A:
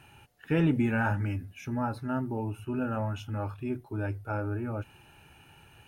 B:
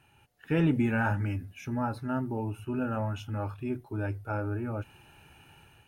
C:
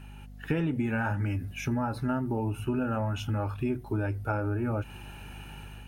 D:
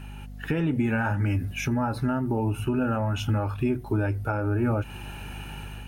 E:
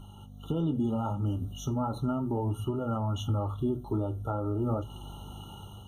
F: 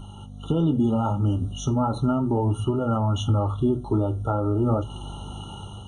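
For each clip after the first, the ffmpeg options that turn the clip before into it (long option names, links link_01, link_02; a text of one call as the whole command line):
ffmpeg -i in.wav -af "dynaudnorm=framelen=150:gausssize=5:maxgain=8dB,volume=-8dB" out.wav
ffmpeg -i in.wav -af "aeval=exprs='val(0)+0.00224*(sin(2*PI*50*n/s)+sin(2*PI*2*50*n/s)/2+sin(2*PI*3*50*n/s)/3+sin(2*PI*4*50*n/s)/4+sin(2*PI*5*50*n/s)/5)':channel_layout=same,acompressor=threshold=-34dB:ratio=10,volume=8.5dB" out.wav
ffmpeg -i in.wav -af "alimiter=limit=-22dB:level=0:latency=1:release=327,volume=6dB" out.wav
ffmpeg -i in.wav -af "flanger=delay=9.9:depth=5.7:regen=-63:speed=0.35:shape=sinusoidal,afftfilt=real='re*eq(mod(floor(b*sr/1024/1400),2),0)':imag='im*eq(mod(floor(b*sr/1024/1400),2),0)':win_size=1024:overlap=0.75" out.wav
ffmpeg -i in.wav -af "aresample=22050,aresample=44100,volume=7.5dB" out.wav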